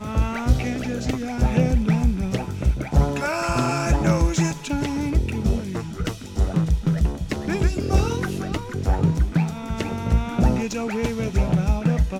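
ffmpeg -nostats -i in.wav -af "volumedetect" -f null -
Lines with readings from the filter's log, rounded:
mean_volume: -21.4 dB
max_volume: -4.9 dB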